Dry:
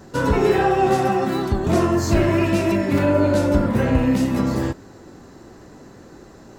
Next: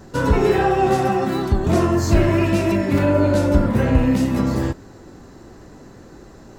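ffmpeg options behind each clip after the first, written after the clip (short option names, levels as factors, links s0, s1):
-af "lowshelf=f=73:g=8"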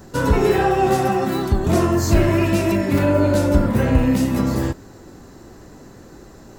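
-af "highshelf=f=9300:g=10"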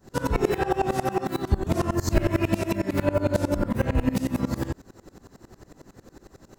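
-af "aeval=exprs='val(0)*pow(10,-23*if(lt(mod(-11*n/s,1),2*abs(-11)/1000),1-mod(-11*n/s,1)/(2*abs(-11)/1000),(mod(-11*n/s,1)-2*abs(-11)/1000)/(1-2*abs(-11)/1000))/20)':c=same"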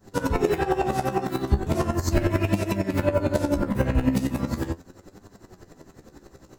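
-af "flanger=delay=9.6:depth=6.4:regen=44:speed=0.38:shape=triangular,volume=1.68"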